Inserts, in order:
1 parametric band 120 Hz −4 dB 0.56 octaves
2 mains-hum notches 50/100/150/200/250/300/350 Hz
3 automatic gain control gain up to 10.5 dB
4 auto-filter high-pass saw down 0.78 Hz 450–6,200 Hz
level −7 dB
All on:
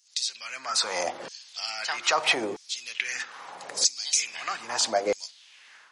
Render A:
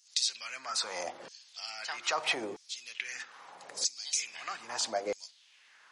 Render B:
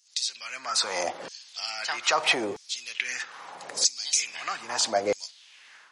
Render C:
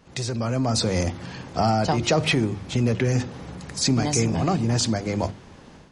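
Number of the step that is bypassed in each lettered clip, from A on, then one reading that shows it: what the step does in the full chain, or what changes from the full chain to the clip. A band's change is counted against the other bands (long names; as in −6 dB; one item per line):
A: 3, change in crest factor +2.0 dB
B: 2, 125 Hz band +2.0 dB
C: 4, 125 Hz band +33.0 dB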